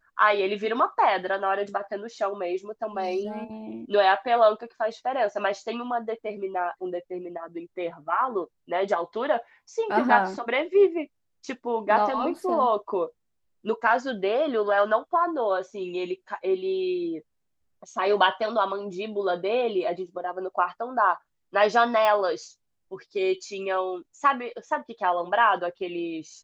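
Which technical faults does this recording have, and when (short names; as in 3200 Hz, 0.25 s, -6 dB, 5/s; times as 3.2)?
22.05 pop -12 dBFS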